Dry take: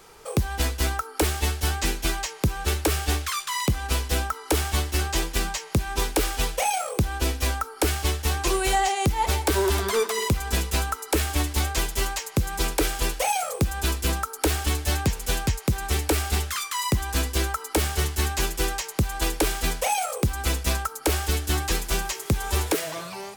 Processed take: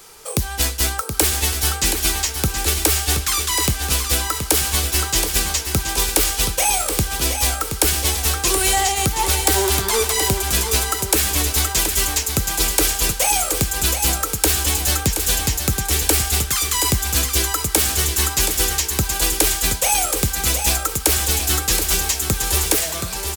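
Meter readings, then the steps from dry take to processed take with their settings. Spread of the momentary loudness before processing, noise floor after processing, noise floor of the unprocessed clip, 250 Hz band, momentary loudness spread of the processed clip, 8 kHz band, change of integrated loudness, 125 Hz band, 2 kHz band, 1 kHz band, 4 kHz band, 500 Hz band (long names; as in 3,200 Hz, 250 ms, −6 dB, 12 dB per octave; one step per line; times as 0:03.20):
3 LU, −29 dBFS, −41 dBFS, +2.0 dB, 3 LU, +12.5 dB, +8.0 dB, +2.0 dB, +5.0 dB, +2.5 dB, +9.0 dB, +2.5 dB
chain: high-shelf EQ 3,300 Hz +12 dB
repeating echo 724 ms, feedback 51%, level −7.5 dB
level +1 dB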